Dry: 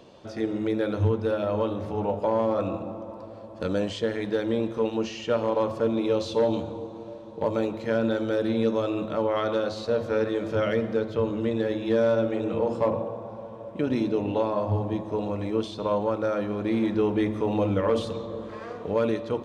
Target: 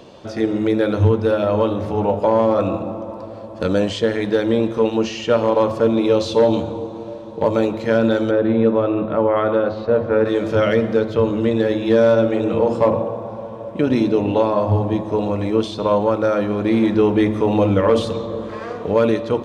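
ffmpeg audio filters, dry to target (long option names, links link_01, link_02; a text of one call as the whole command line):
ffmpeg -i in.wav -filter_complex "[0:a]asplit=3[link_01][link_02][link_03];[link_01]afade=type=out:start_time=8.3:duration=0.02[link_04];[link_02]lowpass=1900,afade=type=in:start_time=8.3:duration=0.02,afade=type=out:start_time=10.24:duration=0.02[link_05];[link_03]afade=type=in:start_time=10.24:duration=0.02[link_06];[link_04][link_05][link_06]amix=inputs=3:normalize=0,volume=8.5dB" out.wav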